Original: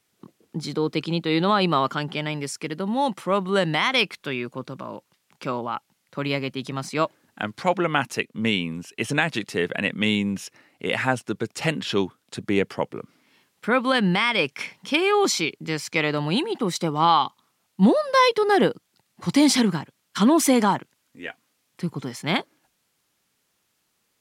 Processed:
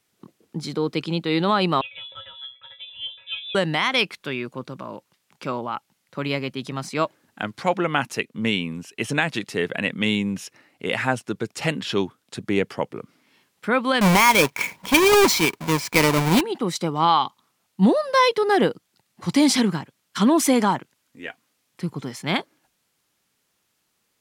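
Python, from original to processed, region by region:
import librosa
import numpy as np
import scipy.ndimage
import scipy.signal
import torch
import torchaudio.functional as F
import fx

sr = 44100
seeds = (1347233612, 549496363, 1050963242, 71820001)

y = fx.chain(x, sr, fx.air_absorb(metres=150.0),
    fx.stiff_resonator(f0_hz=86.0, decay_s=0.5, stiffness=0.03),
    fx.freq_invert(carrier_hz=3700), at=(1.81, 3.55))
y = fx.chain(y, sr, fx.halfwave_hold(),
    fx.small_body(hz=(970.0, 2300.0), ring_ms=25, db=9), at=(14.01, 16.41))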